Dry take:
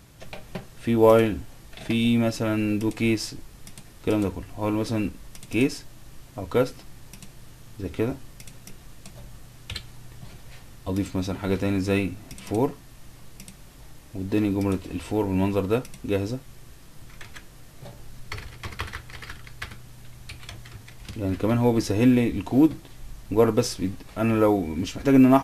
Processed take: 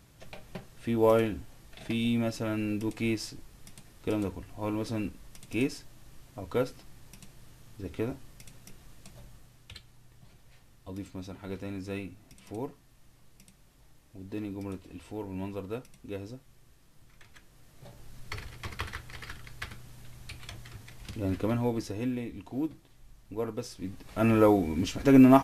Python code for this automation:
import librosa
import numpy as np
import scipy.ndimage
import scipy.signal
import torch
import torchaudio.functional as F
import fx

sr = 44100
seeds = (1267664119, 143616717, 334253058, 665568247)

y = fx.gain(x, sr, db=fx.line((9.19, -7.0), (9.76, -13.5), (17.24, -13.5), (18.33, -4.0), (21.32, -4.0), (22.11, -14.5), (23.69, -14.5), (24.19, -1.5)))